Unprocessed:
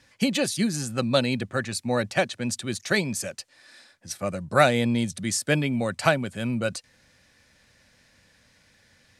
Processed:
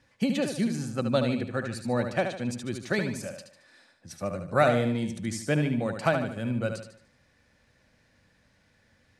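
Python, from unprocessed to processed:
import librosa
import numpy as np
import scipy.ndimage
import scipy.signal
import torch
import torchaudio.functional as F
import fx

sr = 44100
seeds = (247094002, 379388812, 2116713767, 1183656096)

y = fx.high_shelf(x, sr, hz=2200.0, db=-10.0)
y = fx.echo_feedback(y, sr, ms=74, feedback_pct=42, wet_db=-7)
y = y * librosa.db_to_amplitude(-2.5)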